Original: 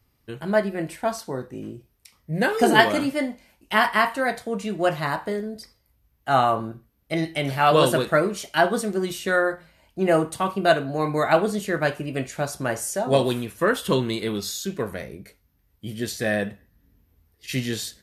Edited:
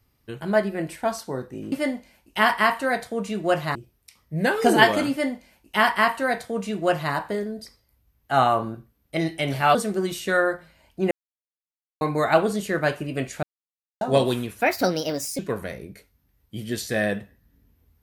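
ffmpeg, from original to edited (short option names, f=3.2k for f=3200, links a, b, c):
-filter_complex "[0:a]asplit=10[a][b][c][d][e][f][g][h][i][j];[a]atrim=end=1.722[k];[b]atrim=start=3.068:end=5.102[l];[c]atrim=start=1.718:end=7.722[m];[d]atrim=start=8.738:end=10.1,asetpts=PTS-STARTPTS,afade=t=out:st=1.358:d=0.004:c=hsin[n];[e]atrim=start=10.1:end=11,asetpts=PTS-STARTPTS,volume=0[o];[f]atrim=start=11:end=12.42,asetpts=PTS-STARTPTS,afade=t=in:d=0.004:c=hsin,afade=t=out:st=1.416:d=0.004:c=hsin[p];[g]atrim=start=12.42:end=13,asetpts=PTS-STARTPTS,volume=0[q];[h]atrim=start=13:end=13.604,asetpts=PTS-STARTPTS,afade=t=in:d=0.004:c=hsin[r];[i]atrim=start=13.6:end=14.69,asetpts=PTS-STARTPTS,asetrate=61740,aresample=44100[s];[j]atrim=start=14.686[t];[k][l]acrossfade=d=0.004:c1=hsin:c2=hsin[u];[u][m]acrossfade=d=0.004:c1=hsin:c2=hsin[v];[n][o][p][q][r]concat=n=5:v=0:a=1[w];[v][w]acrossfade=d=0.004:c1=hsin:c2=hsin[x];[x][s]acrossfade=d=0.004:c1=hsin:c2=hsin[y];[y][t]acrossfade=d=0.004:c1=hsin:c2=hsin"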